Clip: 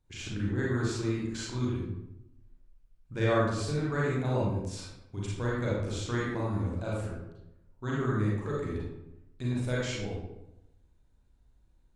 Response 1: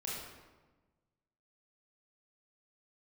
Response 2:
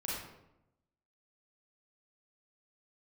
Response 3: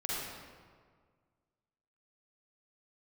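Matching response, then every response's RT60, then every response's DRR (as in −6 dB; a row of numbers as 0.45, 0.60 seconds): 2; 1.3, 0.85, 1.8 seconds; −6.0, −6.5, −7.0 decibels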